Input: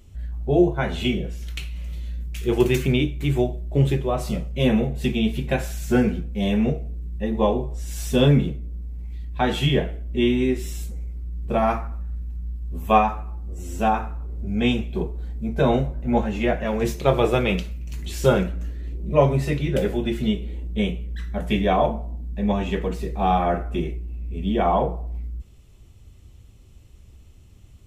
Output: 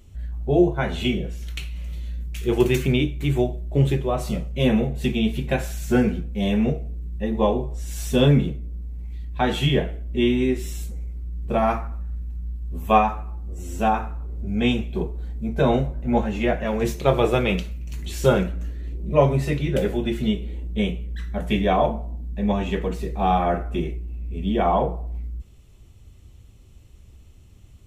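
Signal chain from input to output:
notch filter 5,000 Hz, Q 26

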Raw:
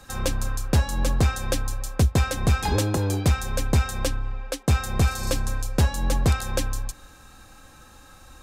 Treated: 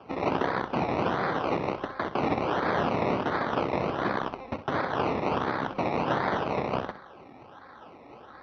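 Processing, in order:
parametric band 860 Hz +9.5 dB 2.3 octaves
wrap-around overflow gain 20.5 dB
spectral tilt +1.5 dB per octave
sample-and-hold swept by an LFO 22×, swing 60% 1.4 Hz
band-pass filter 120–2,300 Hz
mains-hum notches 50/100/150/200 Hz
on a send: flutter between parallel walls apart 11 metres, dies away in 0.3 s
on the sum: level −3 dB
MP2 64 kbit/s 22,050 Hz

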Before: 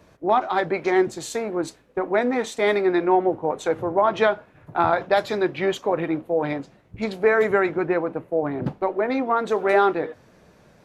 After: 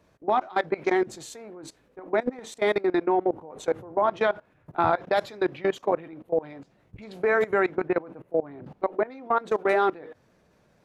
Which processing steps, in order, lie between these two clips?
0:02.04–0:04.22: parametric band 2,300 Hz −2 dB 2.5 octaves
output level in coarse steps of 21 dB

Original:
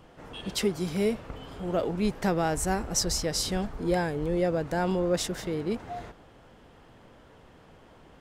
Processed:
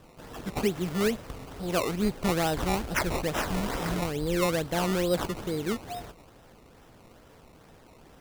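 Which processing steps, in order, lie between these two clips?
healed spectral selection 0:03.51–0:03.99, 230–9,400 Hz before
sample-and-hold swept by an LFO 19×, swing 100% 2.3 Hz

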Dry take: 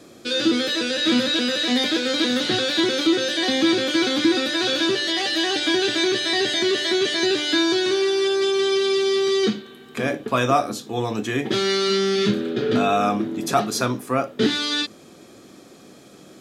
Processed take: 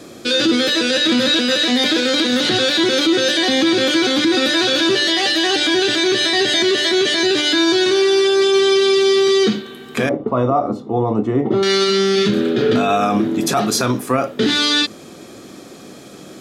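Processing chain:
0:10.09–0:11.63: Savitzky-Golay smoothing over 65 samples
brickwall limiter −16 dBFS, peak gain reduction 9.5 dB
level +8.5 dB

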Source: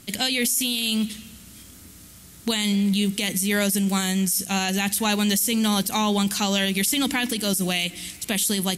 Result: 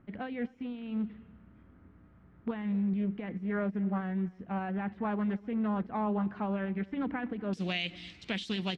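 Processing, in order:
low-pass filter 1,600 Hz 24 dB per octave, from 0:07.53 4,100 Hz
slap from a distant wall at 43 metres, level −23 dB
highs frequency-modulated by the lows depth 0.2 ms
level −8.5 dB

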